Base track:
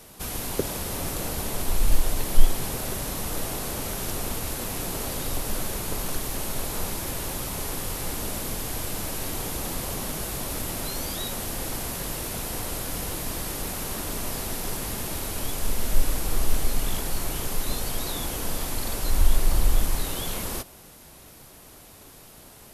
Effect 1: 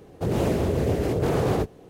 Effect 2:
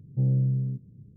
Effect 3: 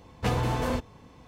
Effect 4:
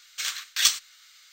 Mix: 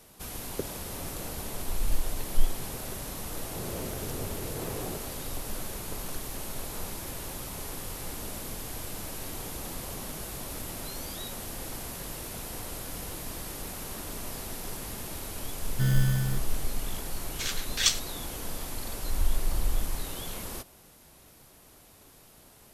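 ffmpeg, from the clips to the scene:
-filter_complex "[0:a]volume=0.447[s0];[1:a]aeval=exprs='val(0)+0.5*0.0119*sgn(val(0))':c=same[s1];[2:a]acrusher=samples=27:mix=1:aa=0.000001[s2];[4:a]lowpass=12000[s3];[s1]atrim=end=1.89,asetpts=PTS-STARTPTS,volume=0.168,afade=t=in:d=0.004:c=hsin,afade=t=out:st=1.886:d=0.004:c=hsin,adelay=146853S[s4];[s2]atrim=end=1.16,asetpts=PTS-STARTPTS,volume=0.794,afade=t=in:d=0.004:c=hsin,afade=t=out:st=1.156:d=0.004:c=hsin,adelay=15620[s5];[s3]atrim=end=1.32,asetpts=PTS-STARTPTS,volume=0.668,afade=t=in:d=0.004:c=hsin,afade=t=out:st=1.316:d=0.004:c=hsin,adelay=17210[s6];[s0][s4][s5][s6]amix=inputs=4:normalize=0"

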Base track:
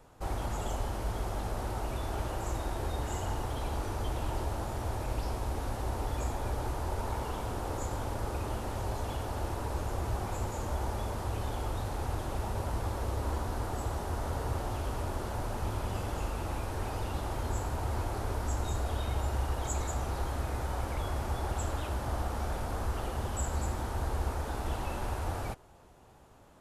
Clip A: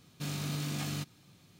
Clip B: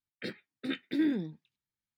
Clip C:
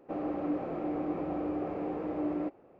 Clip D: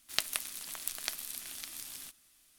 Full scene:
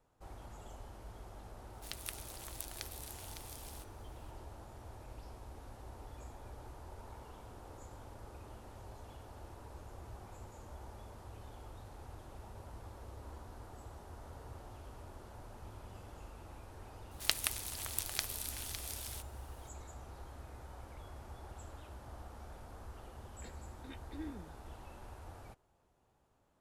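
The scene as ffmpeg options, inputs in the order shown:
-filter_complex "[4:a]asplit=2[s0][s1];[0:a]volume=0.15[s2];[s0]alimiter=limit=0.282:level=0:latency=1:release=121,atrim=end=2.58,asetpts=PTS-STARTPTS,volume=0.398,afade=t=in:d=0.004:c=hsin,afade=t=out:st=2.576:d=0.004:c=hsin,adelay=1730[s3];[s1]atrim=end=2.58,asetpts=PTS-STARTPTS,volume=0.944,afade=t=in:d=0.004:c=hsin,afade=t=out:st=2.576:d=0.004:c=hsin,adelay=17110[s4];[2:a]atrim=end=1.97,asetpts=PTS-STARTPTS,volume=0.141,afade=t=in:d=0.004:c=hsin,afade=t=out:st=1.966:d=0.004:c=hsin,adelay=23200[s5];[s2][s3][s4][s5]amix=inputs=4:normalize=0"

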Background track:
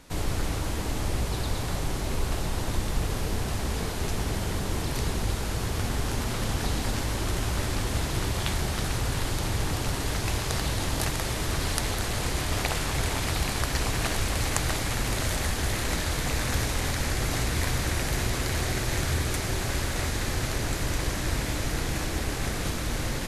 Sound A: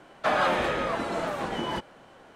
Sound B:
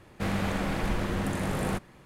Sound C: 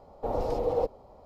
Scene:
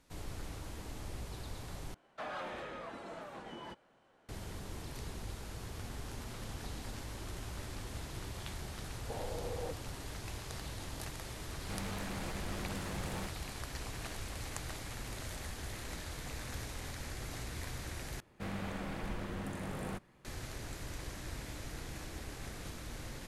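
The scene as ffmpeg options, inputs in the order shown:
-filter_complex "[2:a]asplit=2[s0][s1];[0:a]volume=0.168[s2];[1:a]asoftclip=type=tanh:threshold=0.119[s3];[3:a]alimiter=limit=0.075:level=0:latency=1:release=71[s4];[s0]asoftclip=type=hard:threshold=0.0335[s5];[s2]asplit=3[s6][s7][s8];[s6]atrim=end=1.944[s9];[s3]atrim=end=2.35,asetpts=PTS-STARTPTS,volume=0.158[s10];[s7]atrim=start=4.286:end=18.204[s11];[s1]atrim=end=2.05,asetpts=PTS-STARTPTS,volume=0.282[s12];[s8]atrim=start=20.246[s13];[s4]atrim=end=1.25,asetpts=PTS-STARTPTS,volume=0.282,afade=t=in:d=0.004:c=hsin,afade=t=out:st=1.246:d=0.004:c=hsin,adelay=8860[s14];[s5]atrim=end=2.05,asetpts=PTS-STARTPTS,volume=0.335,afade=t=in:d=0.004:c=hsin,afade=t=out:st=2.046:d=0.004:c=hsin,adelay=11490[s15];[s9][s10]acrossfade=d=0.004:c1=hsin:c2=hsin[s16];[s16][s11]acrossfade=d=0.004:c1=hsin:c2=hsin[s17];[s17][s12]acrossfade=d=0.004:c1=hsin:c2=hsin[s18];[s18][s13]acrossfade=d=0.004:c1=hsin:c2=hsin[s19];[s19][s14][s15]amix=inputs=3:normalize=0"

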